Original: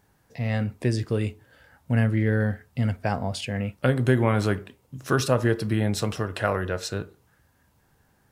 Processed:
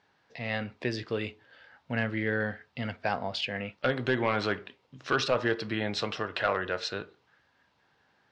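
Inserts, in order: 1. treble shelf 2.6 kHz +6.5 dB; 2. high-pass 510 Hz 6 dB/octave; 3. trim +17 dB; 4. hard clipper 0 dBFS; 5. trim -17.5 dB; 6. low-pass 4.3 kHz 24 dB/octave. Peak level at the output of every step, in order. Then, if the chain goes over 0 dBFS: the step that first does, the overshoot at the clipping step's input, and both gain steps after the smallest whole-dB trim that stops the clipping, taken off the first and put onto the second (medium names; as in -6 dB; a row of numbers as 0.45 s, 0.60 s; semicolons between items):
-6.5 dBFS, -8.0 dBFS, +9.0 dBFS, 0.0 dBFS, -17.5 dBFS, -16.5 dBFS; step 3, 9.0 dB; step 3 +8 dB, step 5 -8.5 dB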